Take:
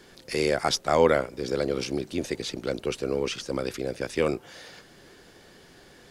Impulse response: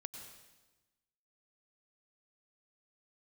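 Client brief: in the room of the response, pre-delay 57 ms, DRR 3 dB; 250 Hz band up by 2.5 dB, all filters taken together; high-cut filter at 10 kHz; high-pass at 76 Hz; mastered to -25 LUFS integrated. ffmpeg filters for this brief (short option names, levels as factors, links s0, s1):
-filter_complex "[0:a]highpass=76,lowpass=10000,equalizer=f=250:t=o:g=3.5,asplit=2[s0][s1];[1:a]atrim=start_sample=2205,adelay=57[s2];[s1][s2]afir=irnorm=-1:irlink=0,volume=1.06[s3];[s0][s3]amix=inputs=2:normalize=0"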